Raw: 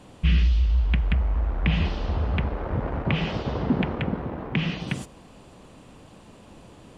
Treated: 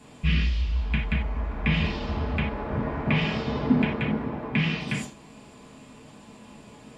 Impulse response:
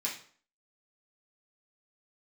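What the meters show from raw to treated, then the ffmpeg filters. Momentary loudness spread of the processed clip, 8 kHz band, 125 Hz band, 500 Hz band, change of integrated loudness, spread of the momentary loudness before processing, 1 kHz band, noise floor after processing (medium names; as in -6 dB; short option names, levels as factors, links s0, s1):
6 LU, no reading, -2.5 dB, 0.0 dB, -1.0 dB, 7 LU, +0.5 dB, -49 dBFS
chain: -filter_complex "[1:a]atrim=start_sample=2205,afade=t=out:st=0.15:d=0.01,atrim=end_sample=7056[s0];[0:a][s0]afir=irnorm=-1:irlink=0,volume=0.841"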